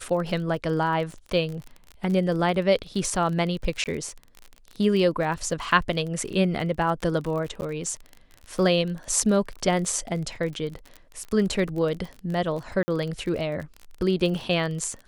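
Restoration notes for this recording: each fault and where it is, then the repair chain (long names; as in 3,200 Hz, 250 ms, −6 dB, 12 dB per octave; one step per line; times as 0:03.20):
surface crackle 34 per second −31 dBFS
0:03.84–0:03.86: drop-out 18 ms
0:07.61–0:07.62: drop-out 9.9 ms
0:12.83–0:12.88: drop-out 50 ms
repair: click removal
repair the gap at 0:03.84, 18 ms
repair the gap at 0:07.61, 9.9 ms
repair the gap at 0:12.83, 50 ms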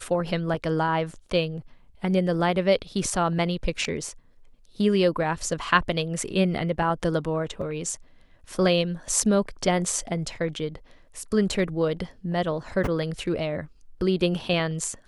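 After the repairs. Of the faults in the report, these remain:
none of them is left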